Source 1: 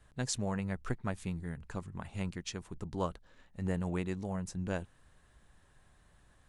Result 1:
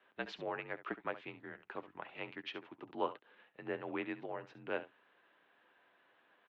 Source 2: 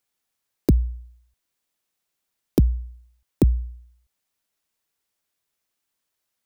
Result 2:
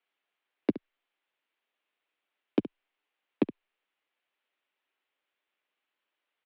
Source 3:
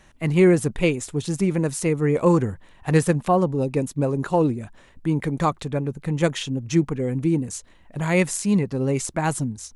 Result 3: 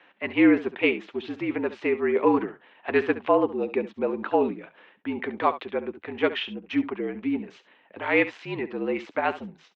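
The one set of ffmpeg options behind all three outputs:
-af "aemphasis=mode=production:type=75fm,highpass=frequency=340:width_type=q:width=0.5412,highpass=frequency=340:width_type=q:width=1.307,lowpass=frequency=3100:width_type=q:width=0.5176,lowpass=frequency=3100:width_type=q:width=0.7071,lowpass=frequency=3100:width_type=q:width=1.932,afreqshift=-54,aecho=1:1:10|69:0.224|0.188"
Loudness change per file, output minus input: −5.5, −10.0, −3.5 LU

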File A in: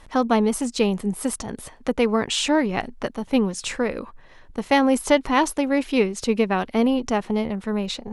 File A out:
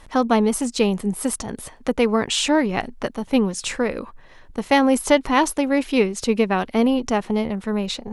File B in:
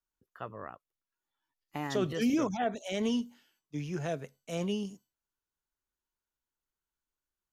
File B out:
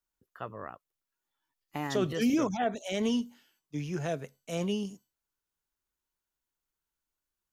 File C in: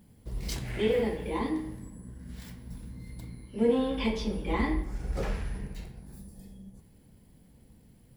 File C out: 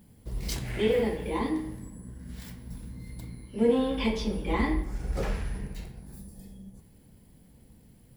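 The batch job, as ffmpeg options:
-af "highshelf=frequency=9600:gain=3.5,volume=1.5dB"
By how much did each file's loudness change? +1.5, +1.5, +1.5 LU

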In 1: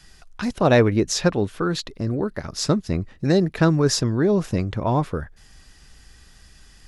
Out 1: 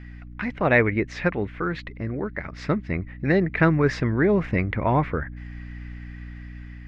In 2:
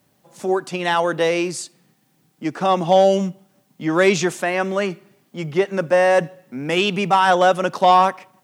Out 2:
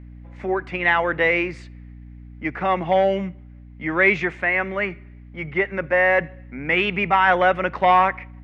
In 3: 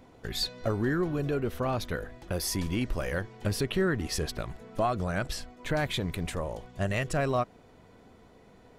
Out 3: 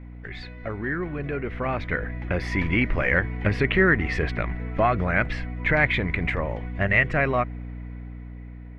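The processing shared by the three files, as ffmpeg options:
-af "aeval=exprs='val(0)+0.0178*(sin(2*PI*60*n/s)+sin(2*PI*2*60*n/s)/2+sin(2*PI*3*60*n/s)/3+sin(2*PI*4*60*n/s)/4+sin(2*PI*5*60*n/s)/5)':channel_layout=same,lowpass=frequency=2100:width_type=q:width=5.4,dynaudnorm=framelen=740:gausssize=5:maxgain=11.5dB,volume=-4dB"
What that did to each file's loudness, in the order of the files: −2.0, −1.5, +7.0 LU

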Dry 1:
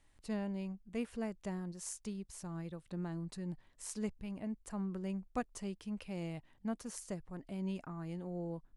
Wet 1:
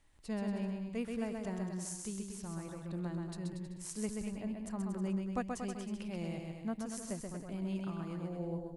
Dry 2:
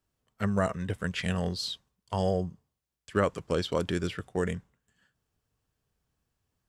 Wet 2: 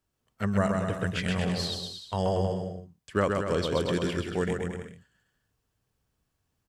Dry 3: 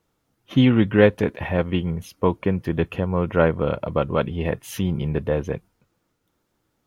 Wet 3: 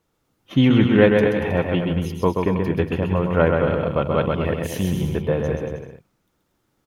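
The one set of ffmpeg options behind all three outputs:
-af "aecho=1:1:130|234|317.2|383.8|437:0.631|0.398|0.251|0.158|0.1"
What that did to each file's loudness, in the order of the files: +2.5, +2.0, +2.0 LU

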